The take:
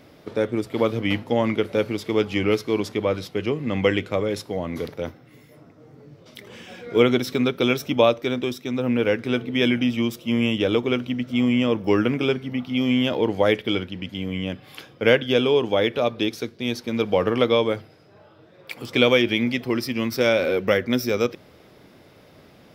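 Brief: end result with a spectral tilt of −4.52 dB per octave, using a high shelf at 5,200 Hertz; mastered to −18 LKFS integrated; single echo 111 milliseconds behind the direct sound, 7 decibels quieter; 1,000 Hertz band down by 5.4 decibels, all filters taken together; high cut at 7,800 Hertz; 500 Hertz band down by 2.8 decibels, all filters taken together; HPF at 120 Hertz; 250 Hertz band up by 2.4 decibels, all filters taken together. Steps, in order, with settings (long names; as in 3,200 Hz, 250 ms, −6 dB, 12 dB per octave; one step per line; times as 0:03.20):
high-pass filter 120 Hz
low-pass filter 7,800 Hz
parametric band 250 Hz +4 dB
parametric band 500 Hz −3 dB
parametric band 1,000 Hz −6.5 dB
high-shelf EQ 5,200 Hz −4 dB
single-tap delay 111 ms −7 dB
level +4 dB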